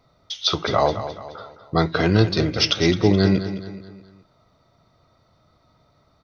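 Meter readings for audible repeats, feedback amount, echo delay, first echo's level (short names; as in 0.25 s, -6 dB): 4, 44%, 0.212 s, -11.5 dB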